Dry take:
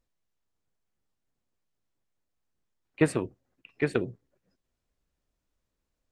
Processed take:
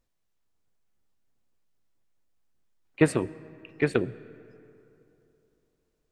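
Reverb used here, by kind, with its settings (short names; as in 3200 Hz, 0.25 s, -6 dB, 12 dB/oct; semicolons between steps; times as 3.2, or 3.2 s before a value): digital reverb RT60 3.1 s, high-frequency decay 0.5×, pre-delay 55 ms, DRR 19.5 dB; gain +2.5 dB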